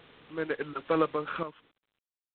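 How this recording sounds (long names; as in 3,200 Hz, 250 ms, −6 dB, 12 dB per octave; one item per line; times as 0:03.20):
a quantiser's noise floor 8 bits, dither triangular
sample-and-hold tremolo, depth 100%
G.726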